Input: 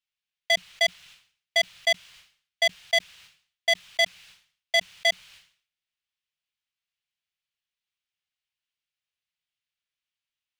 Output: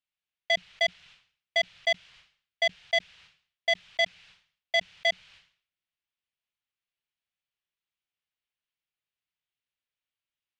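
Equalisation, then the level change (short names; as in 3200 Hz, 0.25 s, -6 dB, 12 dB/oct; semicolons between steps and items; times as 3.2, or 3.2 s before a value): bell 6100 Hz +4.5 dB 2.9 oct; dynamic EQ 1100 Hz, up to -5 dB, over -44 dBFS, Q 3.3; tape spacing loss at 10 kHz 23 dB; 0.0 dB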